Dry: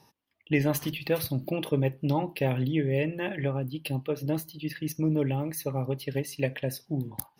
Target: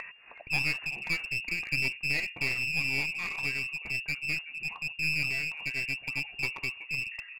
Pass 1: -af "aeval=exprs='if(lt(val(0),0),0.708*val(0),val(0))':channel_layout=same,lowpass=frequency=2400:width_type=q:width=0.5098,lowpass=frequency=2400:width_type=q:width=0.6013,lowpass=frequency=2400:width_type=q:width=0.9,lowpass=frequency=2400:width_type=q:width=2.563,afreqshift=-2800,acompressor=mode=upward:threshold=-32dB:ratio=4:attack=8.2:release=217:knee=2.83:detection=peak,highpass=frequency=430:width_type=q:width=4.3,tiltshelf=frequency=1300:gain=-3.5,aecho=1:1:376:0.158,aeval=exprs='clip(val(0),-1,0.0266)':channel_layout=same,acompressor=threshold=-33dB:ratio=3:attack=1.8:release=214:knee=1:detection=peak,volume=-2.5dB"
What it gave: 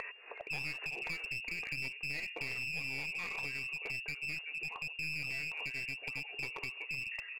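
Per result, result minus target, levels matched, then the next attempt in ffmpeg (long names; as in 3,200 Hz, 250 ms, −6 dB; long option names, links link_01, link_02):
downward compressor: peak gain reduction +13 dB; 500 Hz band +4.5 dB
-af "aeval=exprs='if(lt(val(0),0),0.708*val(0),val(0))':channel_layout=same,lowpass=frequency=2400:width_type=q:width=0.5098,lowpass=frequency=2400:width_type=q:width=0.6013,lowpass=frequency=2400:width_type=q:width=0.9,lowpass=frequency=2400:width_type=q:width=2.563,afreqshift=-2800,acompressor=mode=upward:threshold=-32dB:ratio=4:attack=8.2:release=217:knee=2.83:detection=peak,highpass=frequency=430:width_type=q:width=4.3,tiltshelf=frequency=1300:gain=-3.5,aecho=1:1:376:0.158,aeval=exprs='clip(val(0),-1,0.0266)':channel_layout=same,volume=-2.5dB"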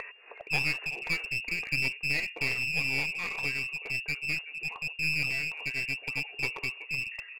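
500 Hz band +3.0 dB
-af "aeval=exprs='if(lt(val(0),0),0.708*val(0),val(0))':channel_layout=same,lowpass=frequency=2400:width_type=q:width=0.5098,lowpass=frequency=2400:width_type=q:width=0.6013,lowpass=frequency=2400:width_type=q:width=0.9,lowpass=frequency=2400:width_type=q:width=2.563,afreqshift=-2800,acompressor=mode=upward:threshold=-32dB:ratio=4:attack=8.2:release=217:knee=2.83:detection=peak,tiltshelf=frequency=1300:gain=-3.5,aecho=1:1:376:0.158,aeval=exprs='clip(val(0),-1,0.0266)':channel_layout=same,volume=-2.5dB"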